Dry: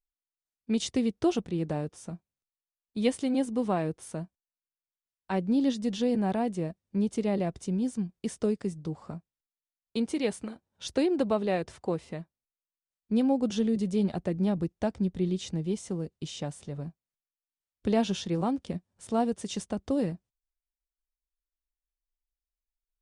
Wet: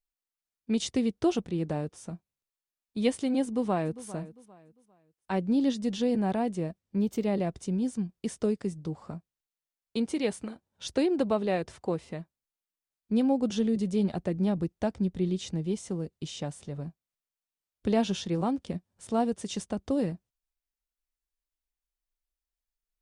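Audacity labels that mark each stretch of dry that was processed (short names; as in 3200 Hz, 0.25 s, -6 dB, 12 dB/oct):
3.450000	4.050000	echo throw 0.4 s, feedback 30%, level -16 dB
6.810000	7.250000	decimation joined by straight lines rate divided by 2×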